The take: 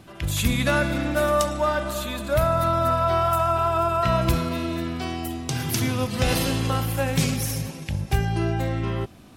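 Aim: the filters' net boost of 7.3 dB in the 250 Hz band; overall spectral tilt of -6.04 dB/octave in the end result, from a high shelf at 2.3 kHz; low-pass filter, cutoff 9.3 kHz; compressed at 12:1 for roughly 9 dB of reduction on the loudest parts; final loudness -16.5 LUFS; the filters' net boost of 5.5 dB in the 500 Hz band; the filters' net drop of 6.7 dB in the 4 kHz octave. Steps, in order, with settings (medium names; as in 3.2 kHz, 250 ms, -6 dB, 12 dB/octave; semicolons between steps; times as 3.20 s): low-pass 9.3 kHz; peaking EQ 250 Hz +7.5 dB; peaking EQ 500 Hz +6.5 dB; treble shelf 2.3 kHz -4.5 dB; peaking EQ 4 kHz -4.5 dB; compression 12:1, threshold -22 dBFS; trim +10.5 dB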